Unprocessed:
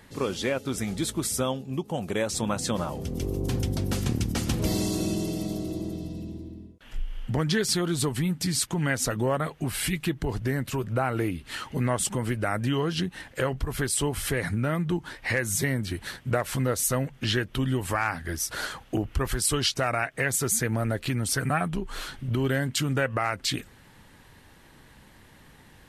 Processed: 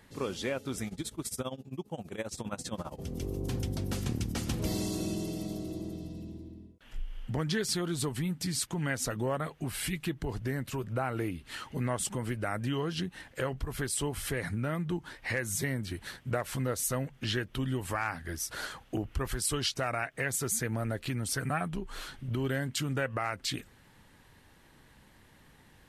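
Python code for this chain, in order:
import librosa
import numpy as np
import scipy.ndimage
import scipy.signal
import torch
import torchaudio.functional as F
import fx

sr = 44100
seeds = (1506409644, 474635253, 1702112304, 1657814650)

y = fx.tremolo(x, sr, hz=15.0, depth=0.89, at=(0.87, 2.99))
y = y * 10.0 ** (-6.0 / 20.0)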